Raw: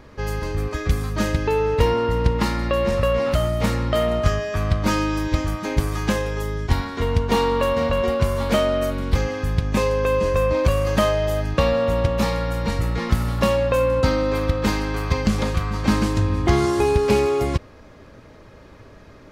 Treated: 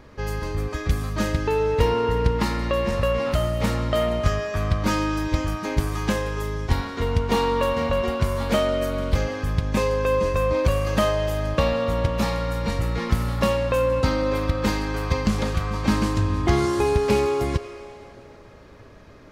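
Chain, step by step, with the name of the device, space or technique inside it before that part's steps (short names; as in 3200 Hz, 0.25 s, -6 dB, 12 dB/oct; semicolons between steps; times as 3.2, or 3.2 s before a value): filtered reverb send (on a send: HPF 420 Hz 24 dB/oct + LPF 8400 Hz + reverb RT60 3.0 s, pre-delay 76 ms, DRR 11 dB); on the sum: gain -2 dB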